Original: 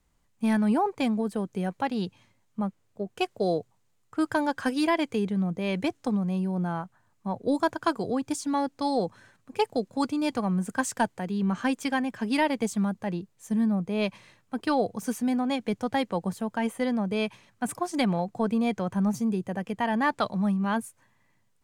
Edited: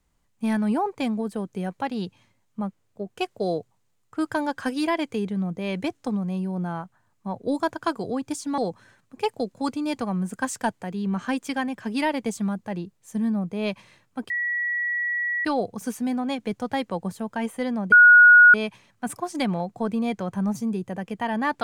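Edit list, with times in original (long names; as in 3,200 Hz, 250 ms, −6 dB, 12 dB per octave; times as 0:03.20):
0:08.58–0:08.94: remove
0:14.66: insert tone 1,930 Hz −23 dBFS 1.15 s
0:17.13: insert tone 1,450 Hz −8 dBFS 0.62 s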